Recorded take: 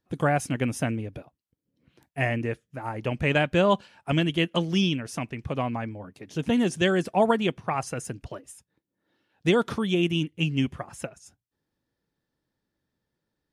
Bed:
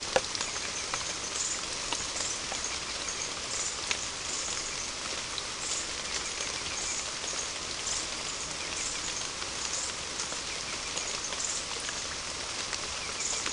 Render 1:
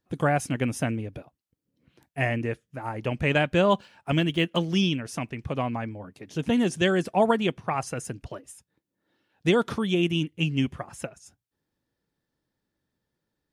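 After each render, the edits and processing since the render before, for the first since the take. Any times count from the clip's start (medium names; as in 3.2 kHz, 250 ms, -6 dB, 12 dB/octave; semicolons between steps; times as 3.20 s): 3.66–4.68 s: median filter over 3 samples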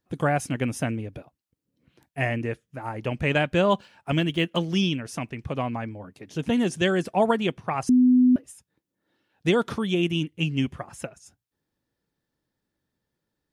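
7.89–8.36 s: bleep 251 Hz -13.5 dBFS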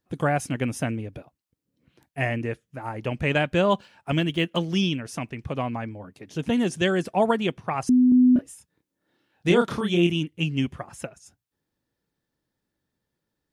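8.09–10.10 s: doubling 29 ms -3 dB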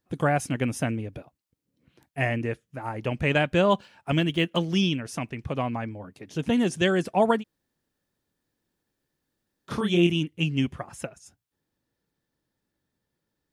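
7.41–9.70 s: room tone, crossfade 0.06 s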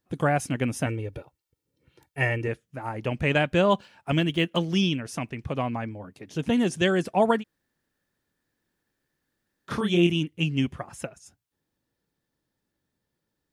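0.86–2.48 s: comb 2.2 ms; 7.35–9.78 s: peaking EQ 1.7 kHz +6 dB 0.83 oct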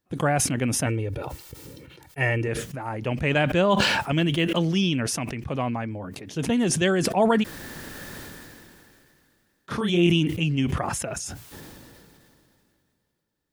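decay stretcher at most 23 dB/s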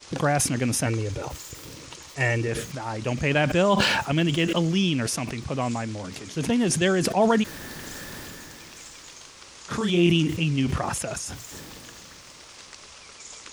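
add bed -10.5 dB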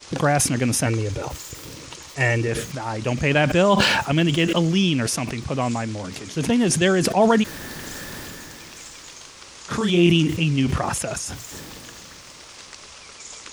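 trim +3.5 dB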